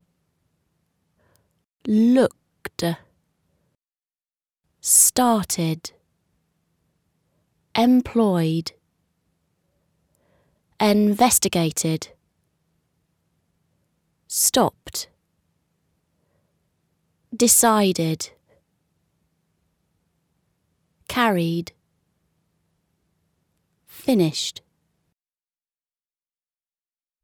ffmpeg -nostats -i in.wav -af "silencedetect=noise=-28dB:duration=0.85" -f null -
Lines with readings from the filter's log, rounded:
silence_start: 0.00
silence_end: 1.85 | silence_duration: 1.85
silence_start: 2.95
silence_end: 4.85 | silence_duration: 1.90
silence_start: 5.87
silence_end: 7.75 | silence_duration: 1.88
silence_start: 8.68
silence_end: 10.80 | silence_duration: 2.12
silence_start: 12.04
silence_end: 14.32 | silence_duration: 2.28
silence_start: 15.03
silence_end: 17.33 | silence_duration: 2.31
silence_start: 18.26
silence_end: 21.10 | silence_duration: 2.84
silence_start: 21.68
silence_end: 24.08 | silence_duration: 2.40
silence_start: 24.57
silence_end: 27.24 | silence_duration: 2.66